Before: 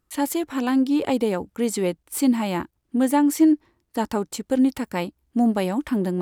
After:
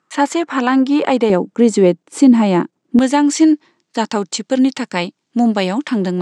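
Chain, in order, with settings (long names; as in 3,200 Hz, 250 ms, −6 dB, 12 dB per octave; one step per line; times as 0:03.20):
elliptic band-pass filter 160–7,400 Hz, stop band 40 dB
parametric band 1,300 Hz +8.5 dB 2.2 octaves, from 0:01.30 310 Hz, from 0:02.99 4,300 Hz
boost into a limiter +7 dB
level −1 dB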